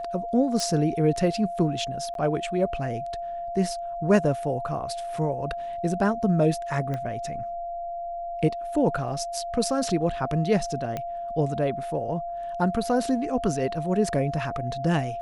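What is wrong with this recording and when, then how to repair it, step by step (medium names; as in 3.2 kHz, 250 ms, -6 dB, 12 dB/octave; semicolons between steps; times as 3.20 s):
whine 690 Hz -30 dBFS
0.60 s: pop
2.14–2.15 s: dropout 12 ms
6.94 s: pop -19 dBFS
10.97 s: pop -17 dBFS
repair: de-click; band-stop 690 Hz, Q 30; interpolate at 2.14 s, 12 ms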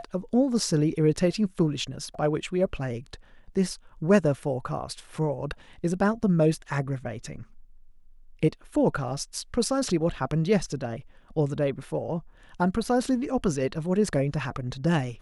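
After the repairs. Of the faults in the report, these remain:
6.94 s: pop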